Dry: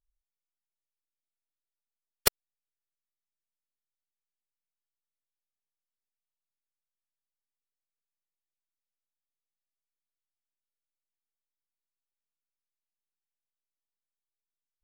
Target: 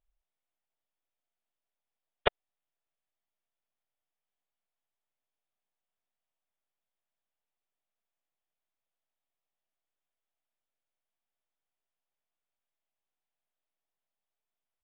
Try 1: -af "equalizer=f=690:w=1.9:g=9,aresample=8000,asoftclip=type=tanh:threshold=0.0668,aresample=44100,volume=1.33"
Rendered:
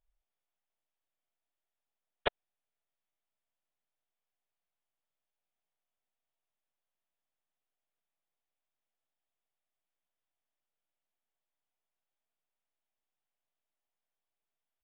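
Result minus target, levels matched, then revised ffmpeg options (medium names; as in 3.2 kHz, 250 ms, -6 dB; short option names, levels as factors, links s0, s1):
saturation: distortion +8 dB
-af "equalizer=f=690:w=1.9:g=9,aresample=8000,asoftclip=type=tanh:threshold=0.188,aresample=44100,volume=1.33"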